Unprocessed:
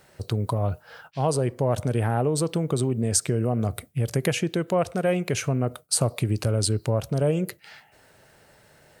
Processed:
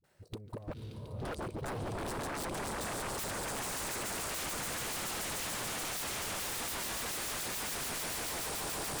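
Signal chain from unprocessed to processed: swelling echo 0.144 s, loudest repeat 8, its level -6 dB; level quantiser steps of 22 dB; dispersion highs, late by 41 ms, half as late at 310 Hz; spectral gain 0.74–3.63, 520–2100 Hz -13 dB; diffused feedback echo 0.537 s, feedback 47%, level -4 dB; wavefolder -28 dBFS; gain -5 dB

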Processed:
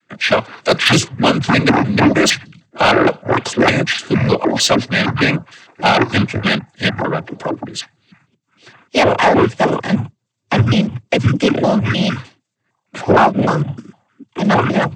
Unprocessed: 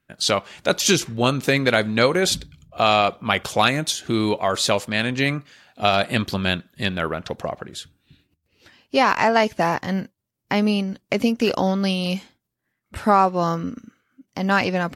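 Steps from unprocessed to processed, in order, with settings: trilling pitch shifter -11.5 st, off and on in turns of 0.153 s; noise vocoder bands 16; soft clip -12.5 dBFS, distortion -16 dB; gain +9 dB

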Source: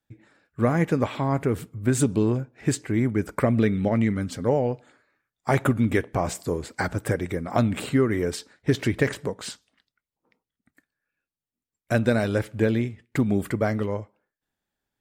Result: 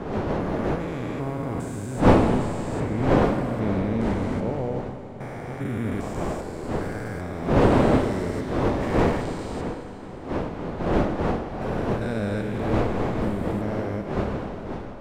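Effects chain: stepped spectrum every 0.4 s; wind noise 520 Hz -24 dBFS; Schroeder reverb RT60 3.6 s, combs from 31 ms, DRR 7 dB; gain -2.5 dB

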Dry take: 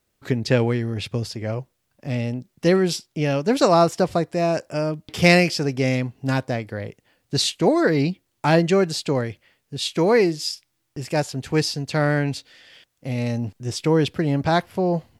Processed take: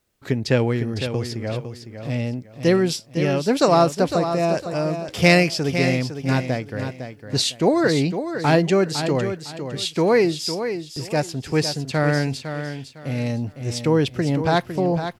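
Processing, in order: feedback echo 0.506 s, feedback 27%, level -9 dB

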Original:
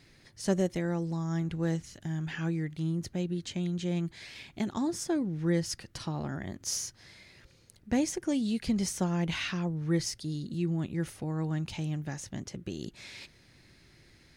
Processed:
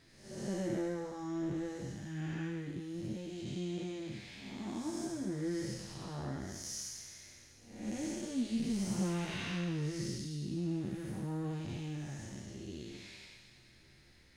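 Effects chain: time blur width 0.317 s; chorus voices 6, 0.23 Hz, delay 12 ms, depth 3.6 ms; thin delay 0.214 s, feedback 52%, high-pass 2300 Hz, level -9 dB; gain +1 dB

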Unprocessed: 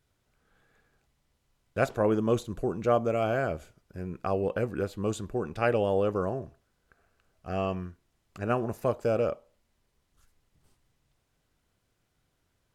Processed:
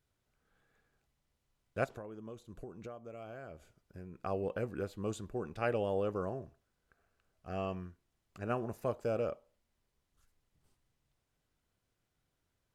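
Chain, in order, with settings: 1.84–4.22 compressor 12:1, threshold -36 dBFS, peak gain reduction 18 dB; gain -7.5 dB

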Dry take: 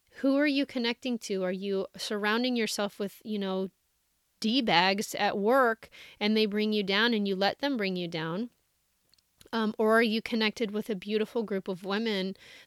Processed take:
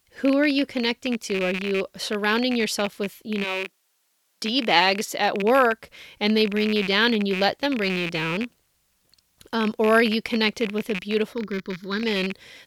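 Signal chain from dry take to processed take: rattling part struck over -39 dBFS, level -23 dBFS; 3.43–5.42 HPF 530 Hz -> 170 Hz 12 dB/oct; 11.33–12.03 fixed phaser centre 2700 Hz, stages 6; gain +5.5 dB

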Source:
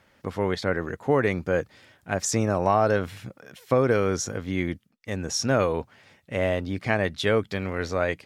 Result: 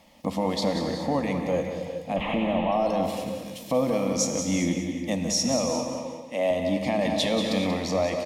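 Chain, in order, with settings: 2.16–2.72 delta modulation 16 kbps, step -24 dBFS; 5.69–6.51 HPF 270 Hz 12 dB/oct; limiter -17 dBFS, peak gain reduction 9 dB; vocal rider within 4 dB 0.5 s; fixed phaser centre 400 Hz, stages 6; feedback echo 0.184 s, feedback 36%, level -8.5 dB; non-linear reverb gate 0.45 s flat, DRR 5 dB; 7.01–7.74 fast leveller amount 50%; gain +5.5 dB

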